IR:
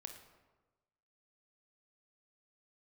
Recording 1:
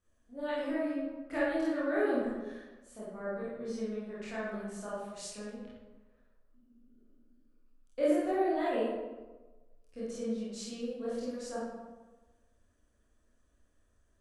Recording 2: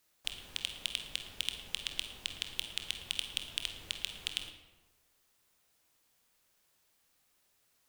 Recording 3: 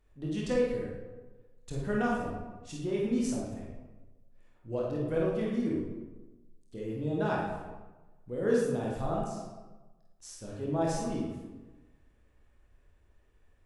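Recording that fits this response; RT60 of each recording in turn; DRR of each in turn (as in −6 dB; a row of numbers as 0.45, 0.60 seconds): 2; 1.2, 1.2, 1.2 seconds; −10.0, 5.0, −4.5 decibels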